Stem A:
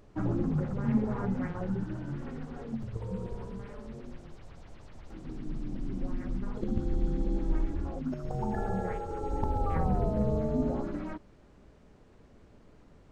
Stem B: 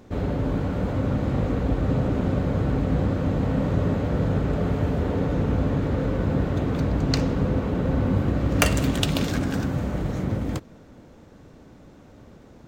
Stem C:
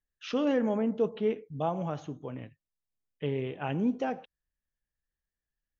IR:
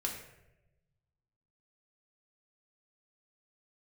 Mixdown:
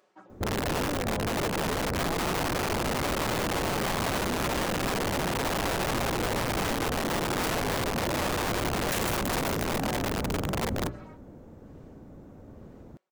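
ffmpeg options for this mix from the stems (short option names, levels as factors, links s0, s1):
-filter_complex "[0:a]highpass=560,aecho=1:1:5.4:0.65,aeval=exprs='val(0)*pow(10,-20*(0.5-0.5*cos(2*PI*1.1*n/s))/20)':c=same,volume=0.794[s0];[1:a]equalizer=f=3800:t=o:w=2.9:g=-14.5,bandreject=f=60:t=h:w=6,bandreject=f=120:t=h:w=6,bandreject=f=180:t=h:w=6,bandreject=f=240:t=h:w=6,bandreject=f=300:t=h:w=6,aeval=exprs='(mod(12.6*val(0)+1,2)-1)/12.6':c=same,adelay=300,volume=1.26[s1];[2:a]adelay=450,volume=0.501[s2];[s0][s1][s2]amix=inputs=3:normalize=0,acompressor=threshold=0.0501:ratio=6"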